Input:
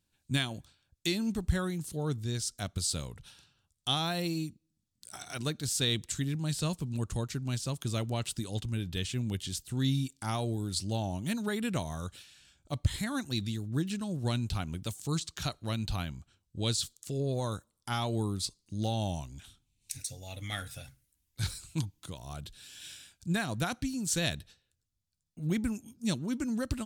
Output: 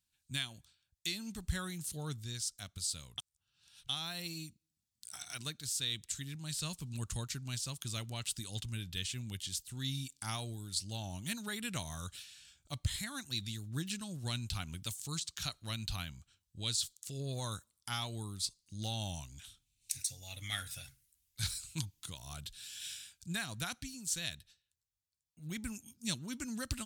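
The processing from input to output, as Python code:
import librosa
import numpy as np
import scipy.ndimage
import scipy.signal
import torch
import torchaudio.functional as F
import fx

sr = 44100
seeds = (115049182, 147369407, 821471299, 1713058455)

y = fx.edit(x, sr, fx.reverse_span(start_s=3.18, length_s=0.71), tone=tone)
y = fx.tone_stack(y, sr, knobs='5-5-5')
y = fx.rider(y, sr, range_db=4, speed_s=0.5)
y = y * librosa.db_to_amplitude(5.5)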